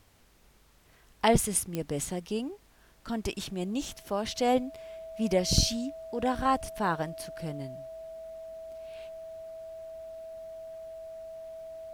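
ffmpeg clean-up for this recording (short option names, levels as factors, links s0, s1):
-af "adeclick=t=4,bandreject=f=650:w=30,agate=range=0.0891:threshold=0.00251"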